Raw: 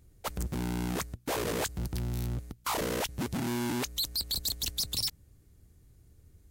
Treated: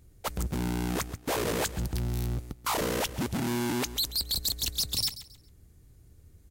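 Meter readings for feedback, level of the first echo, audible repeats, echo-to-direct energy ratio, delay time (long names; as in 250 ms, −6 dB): 28%, −15.0 dB, 2, −14.5 dB, 136 ms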